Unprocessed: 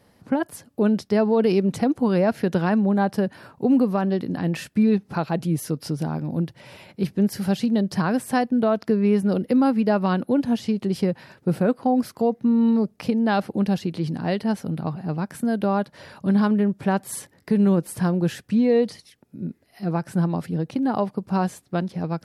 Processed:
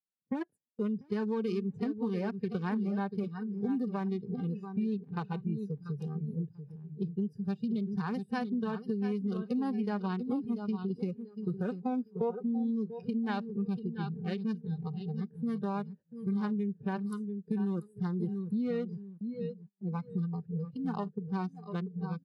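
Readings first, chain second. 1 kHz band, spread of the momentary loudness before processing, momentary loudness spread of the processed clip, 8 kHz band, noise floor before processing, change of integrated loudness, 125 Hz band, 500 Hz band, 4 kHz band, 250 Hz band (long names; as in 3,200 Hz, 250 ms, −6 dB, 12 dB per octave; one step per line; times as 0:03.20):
−13.5 dB, 9 LU, 6 LU, below −25 dB, −60 dBFS, −12.0 dB, −10.0 dB, −14.0 dB, −15.5 dB, −11.5 dB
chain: adaptive Wiener filter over 41 samples
dynamic equaliser 540 Hz, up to −5 dB, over −34 dBFS, Q 2.2
low-pass filter 11,000 Hz 12 dB per octave
repeating echo 689 ms, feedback 32%, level −9 dB
noise reduction from a noise print of the clip's start 21 dB
parametric band 80 Hz −12 dB 0.84 octaves
notch comb filter 670 Hz
gain on a spectral selection 0:12.15–0:12.43, 380–1,400 Hz +10 dB
noise gate −44 dBFS, range −22 dB
downward compressor 5 to 1, threshold −23 dBFS, peak gain reduction 10 dB
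level −6 dB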